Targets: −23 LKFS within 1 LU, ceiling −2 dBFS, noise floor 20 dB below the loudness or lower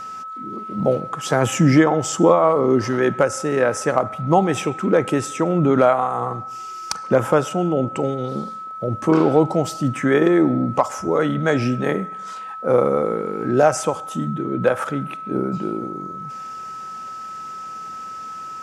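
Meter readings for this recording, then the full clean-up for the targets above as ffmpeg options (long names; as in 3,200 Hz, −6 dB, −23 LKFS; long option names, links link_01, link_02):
interfering tone 1,300 Hz; level of the tone −30 dBFS; integrated loudness −19.5 LKFS; sample peak −3.0 dBFS; target loudness −23.0 LKFS
→ -af "bandreject=frequency=1300:width=30"
-af "volume=-3.5dB"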